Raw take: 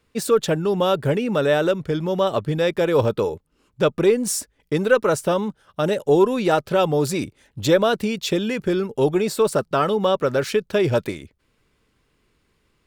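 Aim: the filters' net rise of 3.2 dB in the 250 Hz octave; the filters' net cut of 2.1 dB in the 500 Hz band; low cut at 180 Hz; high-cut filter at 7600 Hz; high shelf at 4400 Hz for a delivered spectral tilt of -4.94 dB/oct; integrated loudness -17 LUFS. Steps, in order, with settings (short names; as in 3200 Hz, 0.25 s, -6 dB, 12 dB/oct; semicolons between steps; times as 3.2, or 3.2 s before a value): HPF 180 Hz; LPF 7600 Hz; bell 250 Hz +8 dB; bell 500 Hz -5 dB; high shelf 4400 Hz +5.5 dB; gain +4.5 dB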